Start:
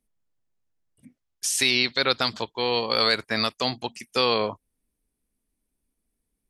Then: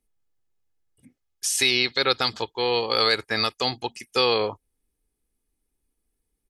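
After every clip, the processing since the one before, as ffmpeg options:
ffmpeg -i in.wav -af "aecho=1:1:2.4:0.4" out.wav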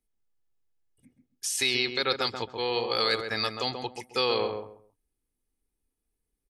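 ffmpeg -i in.wav -filter_complex "[0:a]asplit=2[link_01][link_02];[link_02]adelay=134,lowpass=frequency=1200:poles=1,volume=-4.5dB,asplit=2[link_03][link_04];[link_04]adelay=134,lowpass=frequency=1200:poles=1,volume=0.25,asplit=2[link_05][link_06];[link_06]adelay=134,lowpass=frequency=1200:poles=1,volume=0.25[link_07];[link_01][link_03][link_05][link_07]amix=inputs=4:normalize=0,volume=-5.5dB" out.wav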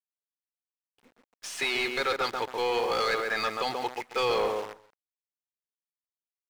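ffmpeg -i in.wav -filter_complex "[0:a]bass=frequency=250:gain=-2,treble=frequency=4000:gain=-11,acrusher=bits=8:dc=4:mix=0:aa=0.000001,asplit=2[link_01][link_02];[link_02]highpass=frequency=720:poles=1,volume=20dB,asoftclip=type=tanh:threshold=-12.5dB[link_03];[link_01][link_03]amix=inputs=2:normalize=0,lowpass=frequency=2500:poles=1,volume=-6dB,volume=-4.5dB" out.wav

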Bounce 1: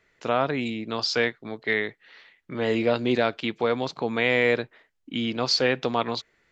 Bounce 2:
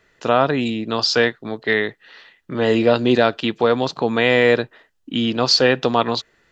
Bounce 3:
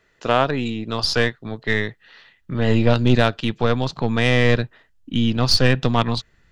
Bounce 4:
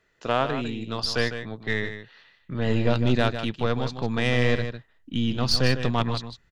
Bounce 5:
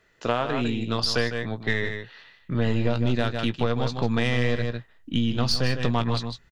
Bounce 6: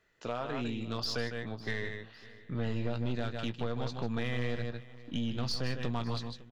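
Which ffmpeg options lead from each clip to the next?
ffmpeg -i in.wav -af "bandreject=frequency=2200:width=6.2,volume=7.5dB" out.wav
ffmpeg -i in.wav -af "aeval=exprs='0.841*(cos(1*acos(clip(val(0)/0.841,-1,1)))-cos(1*PI/2))+0.0841*(cos(3*acos(clip(val(0)/0.841,-1,1)))-cos(3*PI/2))+0.0299*(cos(6*acos(clip(val(0)/0.841,-1,1)))-cos(6*PI/2))':channel_layout=same,asubboost=boost=6.5:cutoff=160" out.wav
ffmpeg -i in.wav -af "aecho=1:1:153:0.335,volume=-6dB" out.wav
ffmpeg -i in.wav -filter_complex "[0:a]asplit=2[link_01][link_02];[link_02]adelay=17,volume=-11.5dB[link_03];[link_01][link_03]amix=inputs=2:normalize=0,acompressor=threshold=-24dB:ratio=6,volume=4.5dB" out.wav
ffmpeg -i in.wav -af "asoftclip=type=tanh:threshold=-16.5dB,aecho=1:1:555|1110|1665:0.1|0.046|0.0212,volume=-8.5dB" out.wav

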